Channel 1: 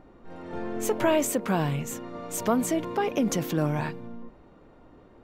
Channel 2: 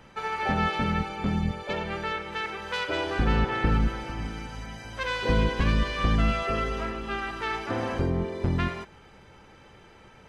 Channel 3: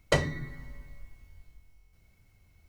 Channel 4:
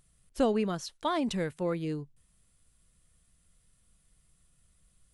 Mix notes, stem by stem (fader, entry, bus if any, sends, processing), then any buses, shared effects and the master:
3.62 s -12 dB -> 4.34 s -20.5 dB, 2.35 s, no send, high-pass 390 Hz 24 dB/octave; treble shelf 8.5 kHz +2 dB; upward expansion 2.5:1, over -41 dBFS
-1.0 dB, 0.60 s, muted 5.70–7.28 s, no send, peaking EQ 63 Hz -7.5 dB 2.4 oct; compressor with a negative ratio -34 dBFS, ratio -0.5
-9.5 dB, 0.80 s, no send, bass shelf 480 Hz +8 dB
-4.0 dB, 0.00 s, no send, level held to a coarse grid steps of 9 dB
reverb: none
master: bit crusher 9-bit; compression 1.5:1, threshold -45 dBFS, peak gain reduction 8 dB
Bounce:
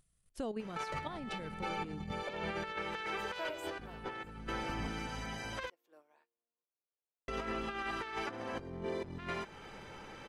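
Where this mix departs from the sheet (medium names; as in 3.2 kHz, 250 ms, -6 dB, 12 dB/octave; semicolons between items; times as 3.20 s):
stem 3 -9.5 dB -> -19.5 dB; master: missing bit crusher 9-bit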